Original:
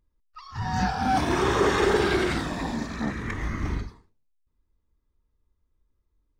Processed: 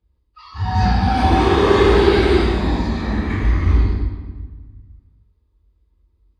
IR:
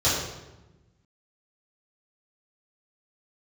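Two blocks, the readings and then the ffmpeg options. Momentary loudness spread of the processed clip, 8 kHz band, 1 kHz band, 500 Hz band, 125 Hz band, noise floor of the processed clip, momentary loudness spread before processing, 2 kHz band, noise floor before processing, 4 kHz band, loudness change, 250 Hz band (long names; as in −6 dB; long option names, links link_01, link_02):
14 LU, can't be measured, +7.0 dB, +9.5 dB, +13.0 dB, −64 dBFS, 11 LU, +4.5 dB, −74 dBFS, +7.0 dB, +9.0 dB, +9.0 dB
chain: -filter_complex "[1:a]atrim=start_sample=2205,asetrate=29988,aresample=44100[link_01];[0:a][link_01]afir=irnorm=-1:irlink=0,volume=-12.5dB"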